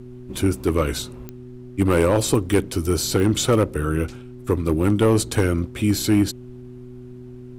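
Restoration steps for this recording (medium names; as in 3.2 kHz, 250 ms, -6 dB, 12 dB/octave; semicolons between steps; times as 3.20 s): clip repair -10 dBFS; de-click; de-hum 124.3 Hz, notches 3; expander -31 dBFS, range -21 dB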